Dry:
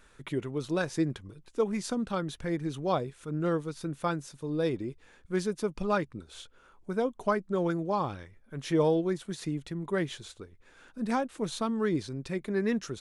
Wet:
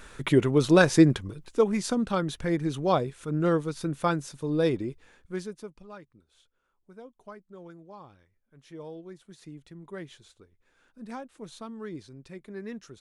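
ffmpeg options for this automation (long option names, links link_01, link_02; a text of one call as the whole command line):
ffmpeg -i in.wav -af "volume=19dB,afade=type=out:start_time=0.95:duration=0.74:silence=0.446684,afade=type=out:start_time=4.68:duration=0.76:silence=0.298538,afade=type=out:start_time=5.44:duration=0.39:silence=0.266073,afade=type=in:start_time=8.81:duration=0.98:silence=0.421697" out.wav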